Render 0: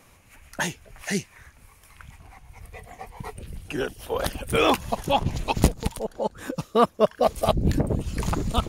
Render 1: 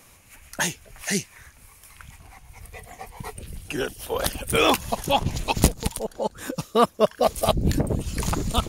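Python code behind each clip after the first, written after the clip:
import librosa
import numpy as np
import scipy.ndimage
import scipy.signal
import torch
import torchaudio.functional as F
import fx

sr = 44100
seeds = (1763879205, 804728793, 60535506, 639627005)

y = fx.high_shelf(x, sr, hz=3600.0, db=8.0)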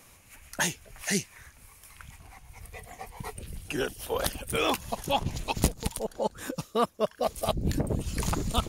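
y = fx.rider(x, sr, range_db=3, speed_s=0.5)
y = y * 10.0 ** (-5.5 / 20.0)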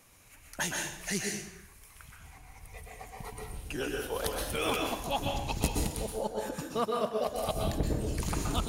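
y = fx.rev_plate(x, sr, seeds[0], rt60_s=0.72, hf_ratio=0.9, predelay_ms=110, drr_db=0.0)
y = y * 10.0 ** (-5.5 / 20.0)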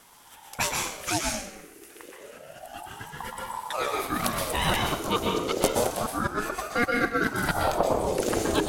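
y = fx.ring_lfo(x, sr, carrier_hz=660.0, swing_pct=45, hz=0.29)
y = y * 10.0 ** (8.5 / 20.0)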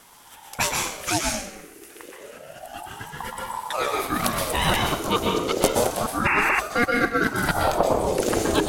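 y = fx.spec_paint(x, sr, seeds[1], shape='noise', start_s=6.25, length_s=0.35, low_hz=770.0, high_hz=2800.0, level_db=-25.0)
y = y * 10.0 ** (3.5 / 20.0)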